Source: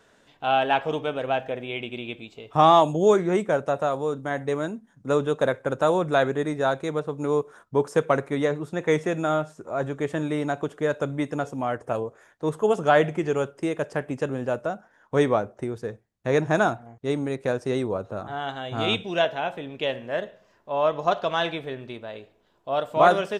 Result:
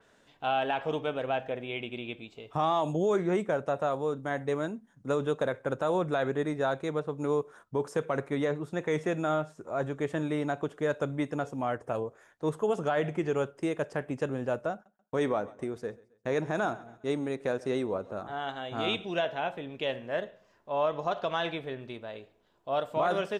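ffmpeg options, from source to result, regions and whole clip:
-filter_complex "[0:a]asettb=1/sr,asplit=3[a][b][c];[a]atrim=end=14.724[d];[b]atrim=start=14.72:end=19.05,asetpts=PTS-STARTPTS,afade=t=in:d=0.004:c=qsin,afade=t=out:st=4.326:d=0.004:c=qsin,agate=range=-35dB:threshold=-52dB:ratio=16:release=100:detection=peak,equalizer=f=110:t=o:w=0.89:g=-6.5,aecho=1:1:135|270|405:0.0708|0.0283|0.0113,atrim=end_sample=190953[e];[c]atrim=start=19.046[f];[d][e]acrossfade=d=0.004:c1=hsin:c2=qsin[g];[g][f]acrossfade=d=0.004:c1=qsin:c2=hsin,alimiter=limit=-14.5dB:level=0:latency=1:release=55,adynamicequalizer=threshold=0.00501:dfrequency=4500:dqfactor=0.7:tfrequency=4500:tqfactor=0.7:attack=5:release=100:ratio=0.375:range=2:mode=cutabove:tftype=highshelf,volume=-4dB"

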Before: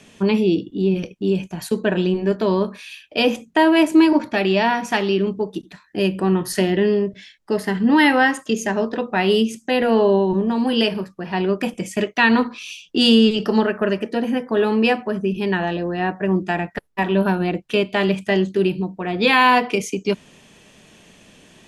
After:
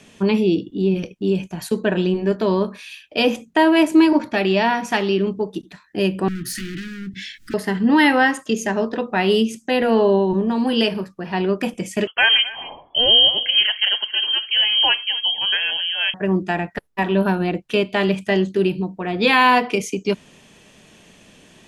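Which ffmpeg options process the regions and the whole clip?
-filter_complex "[0:a]asettb=1/sr,asplit=3[a][b][c];[a]atrim=end=6.284[d];[b]atrim=start=6.28:end=7.54,asetpts=PTS-STARTPTS,afade=t=in:d=0.004:c=qsin,afade=t=out:st=1.256:d=0.004:c=qsin,acompressor=mode=upward:threshold=-21dB:ratio=2.5:attack=3.2:release=140:knee=2.83:detection=peak,volume=24dB,asoftclip=hard,volume=-24dB,asuperstop=centerf=680:order=12:qfactor=0.63[e];[c]atrim=start=7.536[f];[d][e]acrossfade=d=0.004:c1=hsin:c2=qsin[g];[g][f]acrossfade=d=0.004:c1=qsin:c2=hsin,asettb=1/sr,asplit=3[h][i][j];[h]atrim=end=12.074[k];[i]atrim=start=12.07:end=16.14,asetpts=PTS-STARTPTS,afade=t=in:d=0.004:c=qsin,afade=t=out:st=4.066:d=0.004:c=qsin,aecho=1:1:263:0.112,atrim=end_sample=179487,lowpass=f=2.9k:t=q:w=0.5098,lowpass=f=2.9k:t=q:w=0.6013,lowpass=f=2.9k:t=q:w=0.9,lowpass=f=2.9k:t=q:w=2.563,afreqshift=-3400[l];[j]atrim=start=16.136[m];[k][l]acrossfade=d=0.004:c1=hsin:c2=qsin[n];[n][m]acrossfade=d=0.004:c1=qsin:c2=hsin"

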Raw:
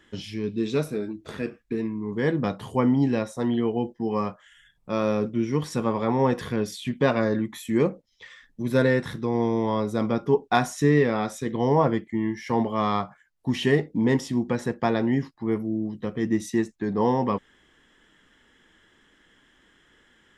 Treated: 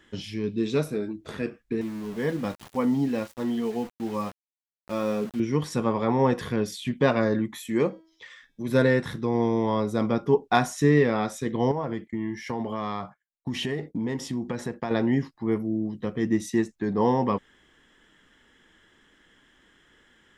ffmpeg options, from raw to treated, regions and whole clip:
-filter_complex "[0:a]asettb=1/sr,asplit=3[a][b][c];[a]atrim=end=1.814[d];[b]atrim=start=1.81:end=5.4,asetpts=PTS-STARTPTS,afade=t=in:d=0.004:c=qsin,afade=t=out:st=3.586:d=0.004:c=qsin,flanger=delay=3.2:depth=1.5:regen=-40:speed=1.3:shape=triangular,aeval=exprs='val(0)*gte(abs(val(0)),0.0106)':c=same[e];[c]atrim=start=5.396[f];[d][e]acrossfade=d=0.004:c1=hsin:c2=qsin[g];[g][f]acrossfade=d=0.004:c1=qsin:c2=hsin,asettb=1/sr,asplit=3[h][i][j];[h]atrim=end=7.554[k];[i]atrim=start=7.55:end=8.69,asetpts=PTS-STARTPTS,afade=t=in:d=0.004:c=qsin,afade=t=out:st=1.136:d=0.004:c=qsin,lowshelf=f=180:g=-8.5,bandreject=f=323.5:t=h:w=4,bandreject=f=647:t=h:w=4,bandreject=f=970.5:t=h:w=4,bandreject=f=1.294k:t=h:w=4,bandreject=f=1.6175k:t=h:w=4,bandreject=f=1.941k:t=h:w=4,bandreject=f=2.2645k:t=h:w=4,bandreject=f=2.588k:t=h:w=4,bandreject=f=2.9115k:t=h:w=4,bandreject=f=3.235k:t=h:w=4,bandreject=f=3.5585k:t=h:w=4,bandreject=f=3.882k:t=h:w=4,bandreject=f=4.2055k:t=h:w=4,bandreject=f=4.529k:t=h:w=4,bandreject=f=4.8525k:t=h:w=4,bandreject=f=5.176k:t=h:w=4,bandreject=f=5.4995k:t=h:w=4,bandreject=f=5.823k:t=h:w=4,bandreject=f=6.1465k:t=h:w=4,bandreject=f=6.47k:t=h:w=4,bandreject=f=6.7935k:t=h:w=4,bandreject=f=7.117k:t=h:w=4,bandreject=f=7.4405k:t=h:w=4[l];[j]atrim=start=8.686[m];[k][l]acrossfade=d=0.004:c1=hsin:c2=qsin[n];[n][m]acrossfade=d=0.004:c1=qsin:c2=hsin,asettb=1/sr,asplit=3[o][p][q];[o]atrim=end=11.714[r];[p]atrim=start=11.71:end=14.91,asetpts=PTS-STARTPTS,afade=t=in:d=0.004:c=qsin,afade=t=out:st=3.196:d=0.004:c=qsin,acompressor=threshold=-25dB:ratio=6:attack=3.2:release=140:knee=1:detection=peak,agate=range=-33dB:threshold=-45dB:ratio=3:release=100:detection=peak[s];[q]atrim=start=14.906[t];[r][s]acrossfade=d=0.004:c1=hsin:c2=qsin[u];[u][t]acrossfade=d=0.004:c1=qsin:c2=hsin"

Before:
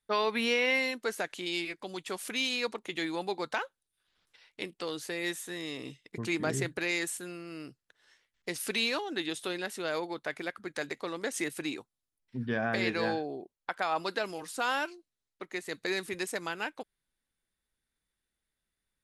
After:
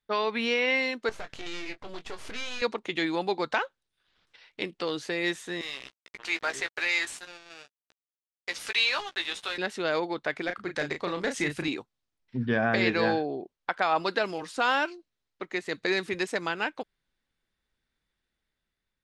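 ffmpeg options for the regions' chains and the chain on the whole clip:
-filter_complex "[0:a]asettb=1/sr,asplit=3[a][b][c];[a]atrim=end=1.094[d];[b]atrim=start=1.09:end=2.62,asetpts=PTS-STARTPTS,afade=t=in:d=0.004:c=qsin,afade=t=out:st=1.526:d=0.004:c=qsin,acompressor=threshold=-36dB:ratio=2:attack=3.2:release=140:knee=1:detection=peak,aeval=exprs='max(val(0),0)':c=same,asplit=2[e][f];[f]adelay=21,volume=-9dB[g];[e][g]amix=inputs=2:normalize=0,atrim=end_sample=67473[h];[c]atrim=start=2.616[i];[d][h]acrossfade=d=0.004:c1=hsin:c2=qsin[j];[j][i]acrossfade=d=0.004:c1=qsin:c2=hsin,asettb=1/sr,asplit=3[k][l][m];[k]atrim=end=5.614[n];[l]atrim=start=5.61:end=9.58,asetpts=PTS-STARTPTS,afade=t=in:d=0.004:c=qsin,afade=t=out:st=3.966:d=0.004:c=qsin,highpass=910,acrusher=bits=6:mix=0:aa=0.5,asplit=2[o][p];[p]adelay=15,volume=-7dB[q];[o][q]amix=inputs=2:normalize=0,atrim=end_sample=175077[r];[m]atrim=start=9.576[s];[n][r]acrossfade=d=0.004:c1=hsin:c2=qsin[t];[t][s]acrossfade=d=0.004:c1=qsin:c2=hsin,asettb=1/sr,asplit=3[u][v][w];[u]atrim=end=10.444[x];[v]atrim=start=10.44:end=11.68,asetpts=PTS-STARTPTS,afade=t=in:d=0.004:c=qsin,afade=t=out:st=1.236:d=0.004:c=qsin,asubboost=boost=8:cutoff=170,asoftclip=type=hard:threshold=-25dB,asplit=2[y][z];[z]adelay=34,volume=-6.5dB[aa];[y][aa]amix=inputs=2:normalize=0,atrim=end_sample=54684[ab];[w]atrim=start=11.676[ac];[x][ab]acrossfade=d=0.004:c1=hsin:c2=qsin[ad];[ad][ac]acrossfade=d=0.004:c1=qsin:c2=hsin,lowpass=5.1k,dynaudnorm=f=410:g=5:m=4.5dB,volume=1dB"

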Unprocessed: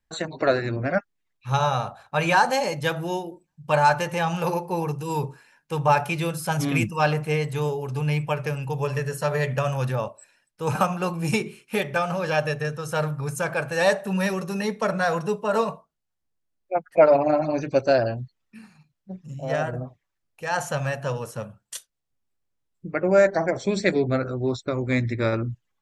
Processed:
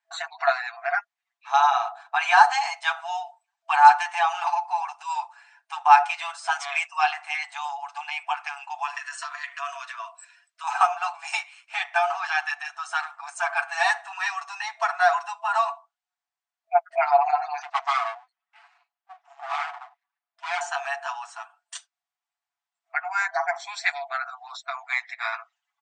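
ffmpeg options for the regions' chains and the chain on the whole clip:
-filter_complex "[0:a]asettb=1/sr,asplit=3[a][b][c];[a]atrim=end=8.974[d];[b]atrim=start=8.97:end=10.64,asetpts=PTS-STARTPTS,afade=t=in:d=0.004:c=qsin,afade=t=out:st=1.666:d=0.004:c=qsin,acompressor=threshold=-28dB:ratio=10:attack=3.2:release=140:knee=1:detection=peak,asuperstop=centerf=800:order=20:qfactor=4.1,tiltshelf=f=660:g=-5.5[e];[c]atrim=start=10.636[f];[d][e]acrossfade=d=0.004:c1=hsin:c2=qsin[g];[g][f]acrossfade=d=0.004:c1=qsin:c2=hsin,asettb=1/sr,asplit=3[h][i][j];[h]atrim=end=17.624[k];[i]atrim=start=17.62:end=20.61,asetpts=PTS-STARTPTS,afade=t=in:d=0.004:c=qsin,afade=t=out:st=2.986:d=0.004:c=qsin,lowpass=f=2k:p=1,aeval=exprs='abs(val(0))':c=same[l];[j]atrim=start=20.606[m];[k][l]acrossfade=d=0.004:c1=hsin:c2=qsin[n];[n][m]acrossfade=d=0.004:c1=qsin:c2=hsin,afftfilt=real='re*between(b*sr/4096,660,9100)':imag='im*between(b*sr/4096,660,9100)':win_size=4096:overlap=0.75,highshelf=f=3.8k:g=-9,aecho=1:1:7:0.71,volume=3dB"

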